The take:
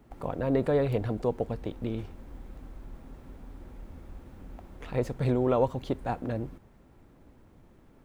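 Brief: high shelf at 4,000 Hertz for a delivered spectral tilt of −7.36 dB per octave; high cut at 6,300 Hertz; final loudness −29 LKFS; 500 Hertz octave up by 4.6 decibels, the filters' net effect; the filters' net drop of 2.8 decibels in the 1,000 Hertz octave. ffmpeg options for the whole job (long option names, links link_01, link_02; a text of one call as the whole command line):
ffmpeg -i in.wav -af "lowpass=6300,equalizer=frequency=500:width_type=o:gain=7,equalizer=frequency=1000:width_type=o:gain=-8,highshelf=frequency=4000:gain=5,volume=-2dB" out.wav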